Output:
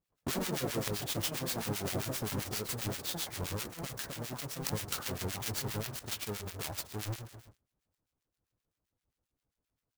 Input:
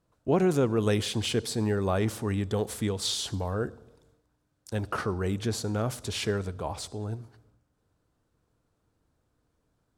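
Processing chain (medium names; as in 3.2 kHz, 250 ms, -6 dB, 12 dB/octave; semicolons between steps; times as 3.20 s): square wave that keeps the level; on a send: delay 85 ms -24 dB; on the sum: de-esser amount 40%; treble shelf 2.7 kHz +8.5 dB; de-hum 80.47 Hz, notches 30; gate -57 dBFS, range -19 dB; treble shelf 6.6 kHz +8.5 dB; compression 5:1, threshold -34 dBFS, peak gain reduction 17.5 dB; ever faster or slower copies 83 ms, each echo +4 st, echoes 2; harmonic tremolo 7.6 Hz, depth 100%, crossover 1.4 kHz; sampling jitter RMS 0.025 ms; trim +3.5 dB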